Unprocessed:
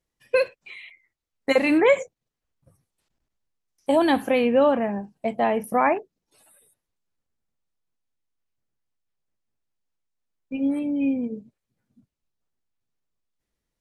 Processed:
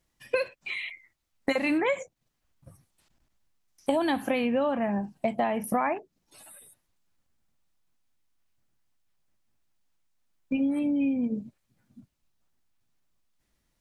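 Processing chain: peaking EQ 450 Hz -7 dB 0.41 oct; compression 6:1, threshold -32 dBFS, peak gain reduction 16 dB; trim +7.5 dB

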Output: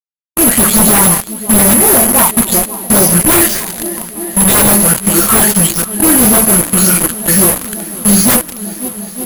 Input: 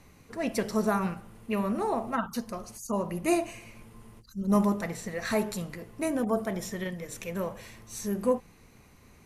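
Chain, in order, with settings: delay that grows with frequency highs late, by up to 250 ms; reverse; upward compressor, threshold -38 dBFS; reverse; word length cut 6-bit, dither none; careless resampling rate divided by 3×, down filtered, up zero stuff; formant shift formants -5 st; on a send: shuffle delay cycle 894 ms, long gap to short 1.5:1, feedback 71%, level -23 dB; on the sum: sine folder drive 15 dB, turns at -7 dBFS; trim +3.5 dB

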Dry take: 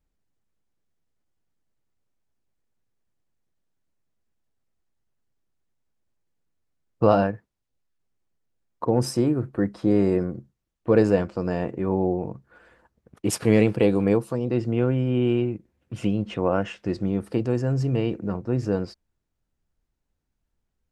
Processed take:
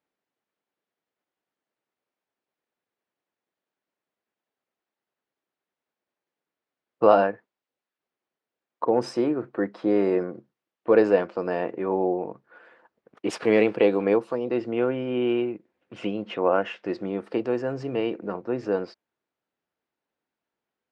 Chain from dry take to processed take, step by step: band-pass 370–3400 Hz; trim +3 dB

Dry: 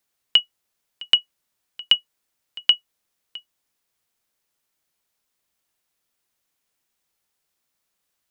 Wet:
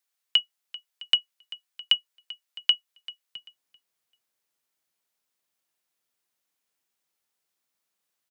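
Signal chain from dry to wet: high-pass 1 kHz 6 dB/octave, from 3.36 s 160 Hz; feedback delay 390 ms, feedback 27%, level -18.5 dB; trim -4.5 dB

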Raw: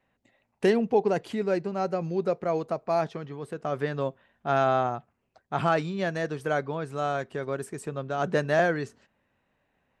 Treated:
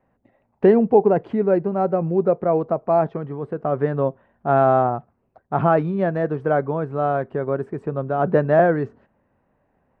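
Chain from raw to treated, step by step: low-pass 1.1 kHz 12 dB/octave; trim +8.5 dB

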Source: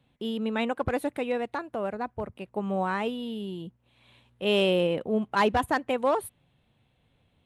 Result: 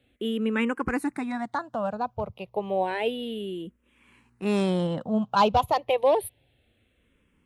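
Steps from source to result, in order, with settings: barber-pole phaser -0.3 Hz; trim +5 dB

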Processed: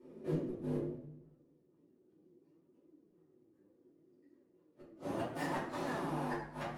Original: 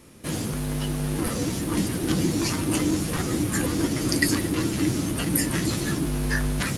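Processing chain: dead-time distortion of 0.053 ms; band-pass sweep 390 Hz -> 820 Hz, 4.27–5.43 s; inverted gate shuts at -28 dBFS, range -41 dB; reverberation RT60 0.60 s, pre-delay 3 ms, DRR -10 dB; flange 0.69 Hz, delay 2.9 ms, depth 7.4 ms, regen +55%; treble shelf 9.5 kHz +11 dB; modulated delay 95 ms, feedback 58%, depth 167 cents, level -18 dB; trim -3 dB

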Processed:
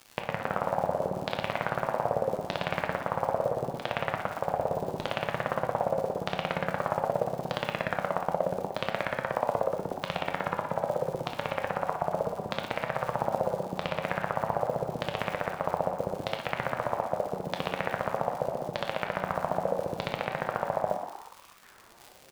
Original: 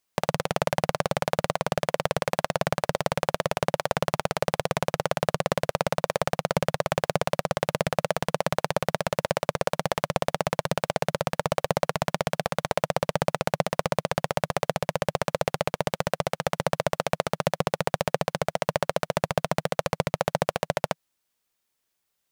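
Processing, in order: recorder AGC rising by 40 dB/s; peak limiter -9 dBFS, peak gain reduction 10 dB; level held to a coarse grid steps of 10 dB; LFO low-pass saw down 0.8 Hz 310–4000 Hz; crackle 140 per s -34 dBFS; flange 0.54 Hz, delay 7.5 ms, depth 4.1 ms, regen +66%; frequency-shifting echo 120 ms, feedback 54%, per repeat +96 Hz, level -9.5 dB; reverberation RT60 0.45 s, pre-delay 18 ms, DRR 6 dB; trim +2.5 dB

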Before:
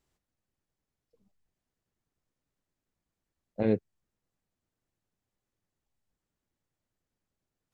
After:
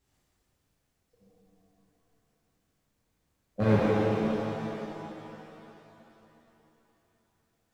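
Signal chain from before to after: hard clipper -24 dBFS, distortion -9 dB; pitch-shifted reverb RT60 3.3 s, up +7 st, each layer -8 dB, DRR -9.5 dB

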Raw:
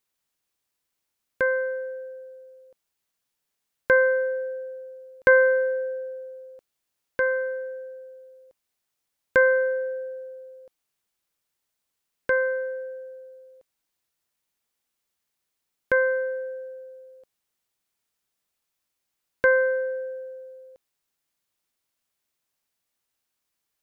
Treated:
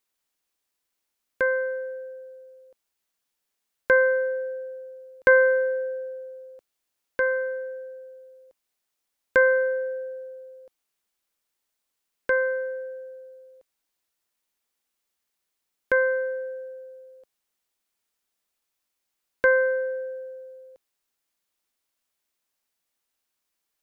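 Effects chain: peaking EQ 120 Hz -12.5 dB 0.66 oct

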